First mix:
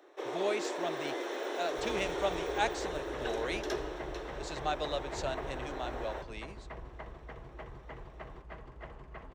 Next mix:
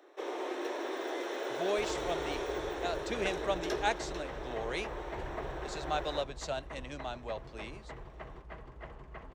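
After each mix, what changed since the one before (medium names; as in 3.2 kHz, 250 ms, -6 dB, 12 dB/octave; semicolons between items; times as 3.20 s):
speech: entry +1.25 s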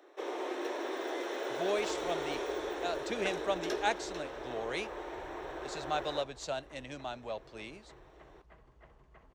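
second sound -12.0 dB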